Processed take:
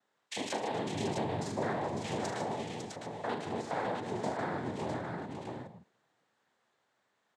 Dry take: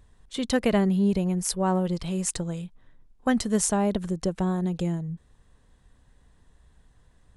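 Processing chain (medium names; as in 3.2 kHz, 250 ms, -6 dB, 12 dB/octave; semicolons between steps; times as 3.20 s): spectrogram pixelated in time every 50 ms; high-pass 550 Hz 12 dB/octave; low-pass that closes with the level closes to 2.4 kHz, closed at -29.5 dBFS; treble shelf 2.2 kHz -8 dB; waveshaping leveller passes 2; compression 5:1, threshold -34 dBFS, peak gain reduction 10.5 dB; two-slope reverb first 0.45 s, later 1.9 s, from -17 dB, DRR 17.5 dB; noise-vocoded speech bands 6; multi-tap echo 42/76/154/424/552/656 ms -8/-12.5/-9.5/-14.5/-6.5/-4.5 dB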